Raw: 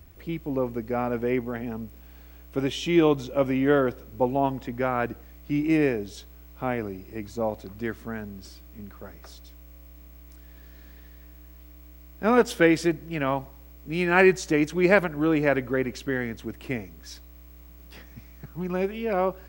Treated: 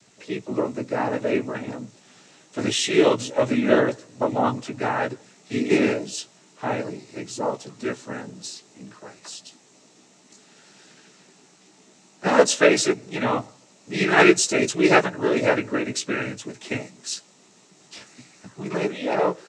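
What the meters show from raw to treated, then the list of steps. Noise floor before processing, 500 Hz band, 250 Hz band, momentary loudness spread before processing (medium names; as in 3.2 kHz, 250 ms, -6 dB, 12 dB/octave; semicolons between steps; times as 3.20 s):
-48 dBFS, +3.0 dB, +1.0 dB, 21 LU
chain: tone controls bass -5 dB, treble +14 dB; noise-vocoded speech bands 12; doubling 16 ms -5.5 dB; trim +2.5 dB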